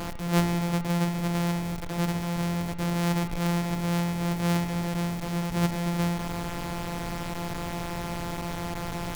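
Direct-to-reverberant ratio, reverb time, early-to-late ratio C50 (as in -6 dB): 10.0 dB, 1.2 s, 10.5 dB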